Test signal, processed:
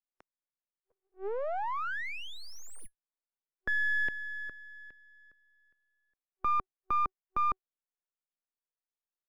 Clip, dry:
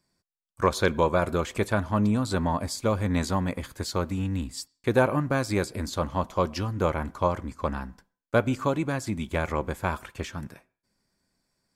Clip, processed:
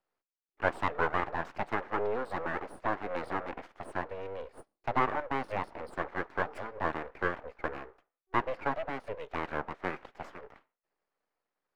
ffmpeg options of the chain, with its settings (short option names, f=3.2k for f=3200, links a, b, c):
-filter_complex "[0:a]afftfilt=real='re*between(b*sr/4096,190,5300)':imag='im*between(b*sr/4096,190,5300)':win_size=4096:overlap=0.75,aeval=exprs='abs(val(0))':c=same,acrossover=split=270 2100:gain=0.224 1 0.112[a][b][c];[a][b][c]amix=inputs=3:normalize=0"